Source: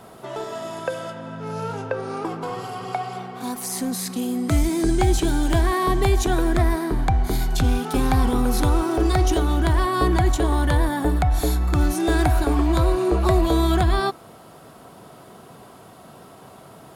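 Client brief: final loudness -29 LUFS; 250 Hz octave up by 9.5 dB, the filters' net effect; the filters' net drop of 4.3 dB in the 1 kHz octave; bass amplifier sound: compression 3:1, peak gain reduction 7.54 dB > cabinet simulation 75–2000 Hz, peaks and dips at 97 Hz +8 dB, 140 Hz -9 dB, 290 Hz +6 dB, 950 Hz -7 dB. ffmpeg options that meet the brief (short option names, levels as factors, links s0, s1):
-af "equalizer=f=250:t=o:g=8.5,equalizer=f=1000:t=o:g=-3.5,acompressor=threshold=0.0891:ratio=3,highpass=f=75:w=0.5412,highpass=f=75:w=1.3066,equalizer=f=97:t=q:w=4:g=8,equalizer=f=140:t=q:w=4:g=-9,equalizer=f=290:t=q:w=4:g=6,equalizer=f=950:t=q:w=4:g=-7,lowpass=f=2000:w=0.5412,lowpass=f=2000:w=1.3066,volume=0.501"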